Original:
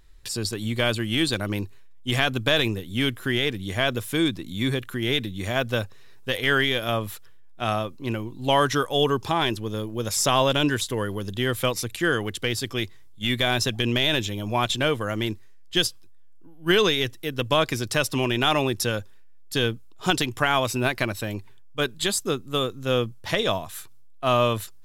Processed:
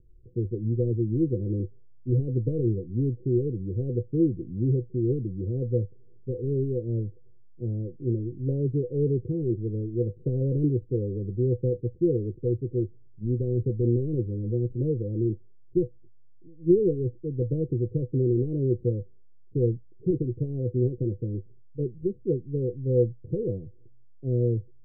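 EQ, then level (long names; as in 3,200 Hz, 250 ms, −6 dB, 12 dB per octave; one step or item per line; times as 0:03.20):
Chebyshev low-pass with heavy ripple 510 Hz, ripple 9 dB
+5.0 dB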